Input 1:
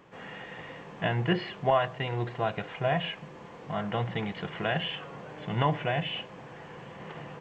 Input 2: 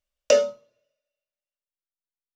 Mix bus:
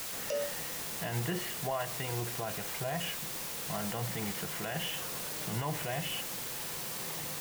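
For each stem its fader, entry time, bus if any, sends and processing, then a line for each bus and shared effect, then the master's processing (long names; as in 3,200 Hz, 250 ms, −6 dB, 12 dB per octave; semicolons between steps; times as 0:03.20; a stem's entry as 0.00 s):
−3.5 dB, 0.00 s, no send, bit-depth reduction 6 bits, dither triangular
−10.0 dB, 0.00 s, no send, no processing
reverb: not used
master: brickwall limiter −25 dBFS, peak gain reduction 10.5 dB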